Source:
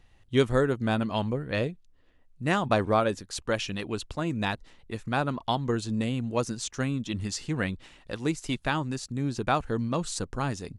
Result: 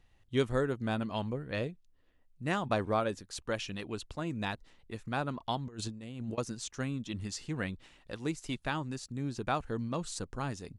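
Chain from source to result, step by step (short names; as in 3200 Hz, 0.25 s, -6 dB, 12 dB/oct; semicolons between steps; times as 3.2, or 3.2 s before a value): 5.67–6.38 negative-ratio compressor -33 dBFS, ratio -0.5; gain -6.5 dB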